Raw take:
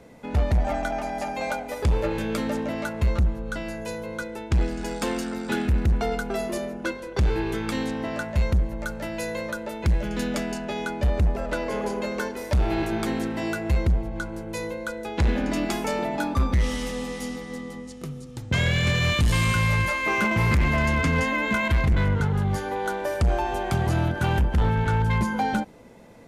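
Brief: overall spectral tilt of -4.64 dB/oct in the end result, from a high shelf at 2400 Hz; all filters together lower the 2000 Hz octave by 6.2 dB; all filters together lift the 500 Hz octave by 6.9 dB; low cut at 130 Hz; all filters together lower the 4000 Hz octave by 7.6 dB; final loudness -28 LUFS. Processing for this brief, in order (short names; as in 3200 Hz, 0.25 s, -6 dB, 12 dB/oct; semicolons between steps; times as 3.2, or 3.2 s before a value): HPF 130 Hz; bell 500 Hz +9 dB; bell 2000 Hz -5.5 dB; high shelf 2400 Hz -4.5 dB; bell 4000 Hz -4 dB; gain -2.5 dB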